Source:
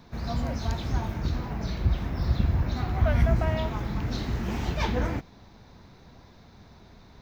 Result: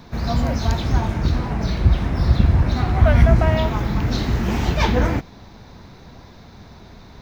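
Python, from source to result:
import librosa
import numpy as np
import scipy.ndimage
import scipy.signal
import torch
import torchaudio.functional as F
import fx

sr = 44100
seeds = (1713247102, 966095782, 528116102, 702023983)

y = fx.resample_linear(x, sr, factor=2, at=(0.81, 3.53))
y = y * 10.0 ** (9.0 / 20.0)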